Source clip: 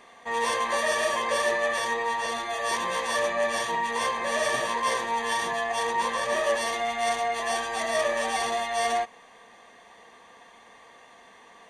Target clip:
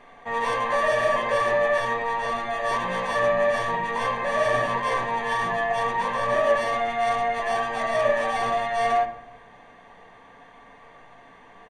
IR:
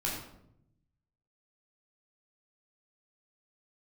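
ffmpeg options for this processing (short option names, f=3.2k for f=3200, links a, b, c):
-filter_complex "[0:a]bass=f=250:g=6,treble=f=4k:g=-11,bandreject=f=50:t=h:w=6,bandreject=f=100:t=h:w=6,bandreject=f=150:t=h:w=6,bandreject=f=200:t=h:w=6,bandreject=f=250:t=h:w=6,bandreject=f=300:t=h:w=6,bandreject=f=350:t=h:w=6,asplit=2[a][b];[b]aecho=1:1:6.9:0.76[c];[1:a]atrim=start_sample=2205,lowpass=2.9k,lowshelf=f=60:g=9[d];[c][d]afir=irnorm=-1:irlink=0,volume=-10dB[e];[a][e]amix=inputs=2:normalize=0"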